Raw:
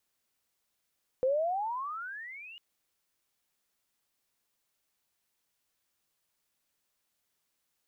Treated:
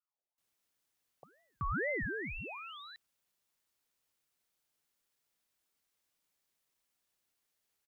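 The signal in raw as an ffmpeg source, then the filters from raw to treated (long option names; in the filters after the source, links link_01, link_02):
-f lavfi -i "aevalsrc='pow(10,(-23.5-22*t/1.35)/20)*sin(2*PI*502*1.35/(30.5*log(2)/12)*(exp(30.5*log(2)/12*t/1.35)-1))':duration=1.35:sample_rate=44100"
-filter_complex "[0:a]acrossover=split=200[link_01][link_02];[link_02]adelay=380[link_03];[link_01][link_03]amix=inputs=2:normalize=0,alimiter=level_in=4dB:limit=-24dB:level=0:latency=1,volume=-4dB,aeval=exprs='val(0)*sin(2*PI*950*n/s+950*0.4/2.1*sin(2*PI*2.1*n/s))':channel_layout=same"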